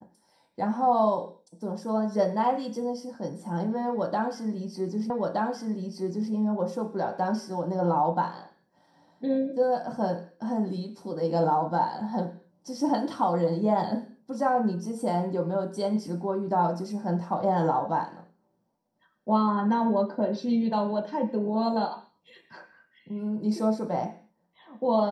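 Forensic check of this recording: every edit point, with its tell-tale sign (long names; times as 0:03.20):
0:05.10: the same again, the last 1.22 s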